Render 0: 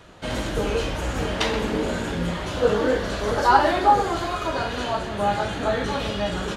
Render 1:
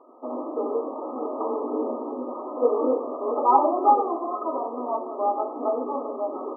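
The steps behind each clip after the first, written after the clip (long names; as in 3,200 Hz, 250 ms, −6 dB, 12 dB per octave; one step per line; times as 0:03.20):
brick-wall band-pass 230–1,300 Hz
level −1 dB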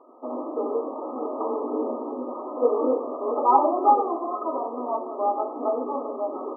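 no processing that can be heard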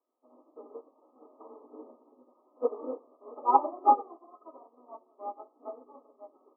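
expander for the loud parts 2.5 to 1, over −34 dBFS
level −2 dB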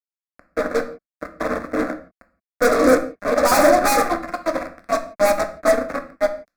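fuzz pedal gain 46 dB, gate −50 dBFS
phaser with its sweep stopped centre 600 Hz, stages 8
convolution reverb, pre-delay 7 ms, DRR 7 dB
level +4 dB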